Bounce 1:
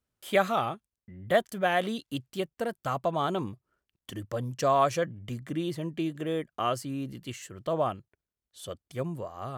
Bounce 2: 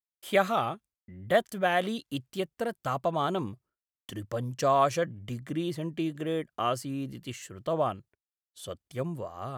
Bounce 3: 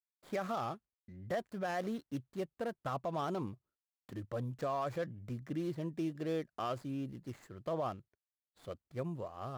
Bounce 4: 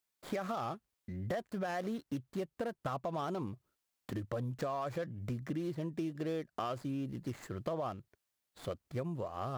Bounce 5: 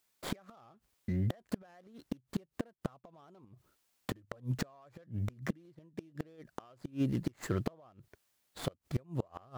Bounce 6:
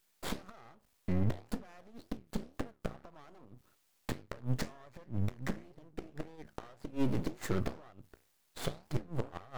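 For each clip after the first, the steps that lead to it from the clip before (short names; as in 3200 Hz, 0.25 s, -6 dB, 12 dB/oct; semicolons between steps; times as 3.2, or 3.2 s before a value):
expander -53 dBFS
median filter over 15 samples; limiter -23.5 dBFS, peak gain reduction 10 dB; gain -5 dB
compressor 4:1, threshold -46 dBFS, peak gain reduction 12 dB; gain +10 dB
flipped gate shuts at -30 dBFS, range -30 dB; gain +9 dB
flange 1.9 Hz, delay 9.2 ms, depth 8.9 ms, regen -77%; tube stage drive 28 dB, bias 0.65; half-wave rectifier; gain +14.5 dB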